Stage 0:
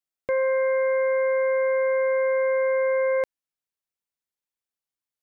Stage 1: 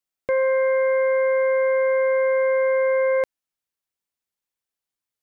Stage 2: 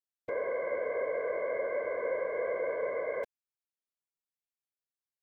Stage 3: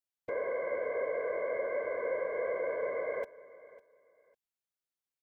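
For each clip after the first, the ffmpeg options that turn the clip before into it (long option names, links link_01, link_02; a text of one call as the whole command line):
ffmpeg -i in.wav -af "acontrast=46,volume=-3dB" out.wav
ffmpeg -i in.wav -af "afftfilt=real='hypot(re,im)*cos(2*PI*random(0))':imag='hypot(re,im)*sin(2*PI*random(1))':win_size=512:overlap=0.75,volume=-7.5dB" out.wav
ffmpeg -i in.wav -af "aecho=1:1:551|1102:0.112|0.0258,volume=-1dB" out.wav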